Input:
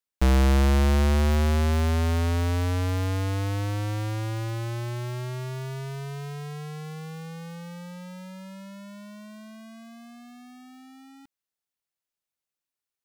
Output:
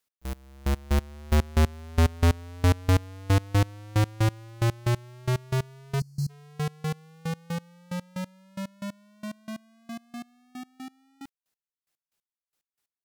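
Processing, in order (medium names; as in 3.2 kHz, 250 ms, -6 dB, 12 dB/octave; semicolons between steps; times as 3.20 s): sine folder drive 6 dB, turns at -17 dBFS; time-frequency box 6.00–6.30 s, 260–4100 Hz -29 dB; trance gate "x..x...." 182 bpm -24 dB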